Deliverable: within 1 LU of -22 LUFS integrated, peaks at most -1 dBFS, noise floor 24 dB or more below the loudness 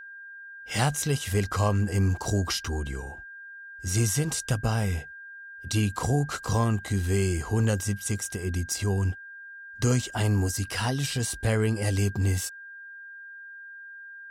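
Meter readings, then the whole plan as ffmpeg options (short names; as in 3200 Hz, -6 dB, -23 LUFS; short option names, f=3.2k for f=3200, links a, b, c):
steady tone 1600 Hz; tone level -41 dBFS; loudness -27.5 LUFS; peak -12.0 dBFS; loudness target -22.0 LUFS
-> -af "bandreject=f=1.6k:w=30"
-af "volume=5.5dB"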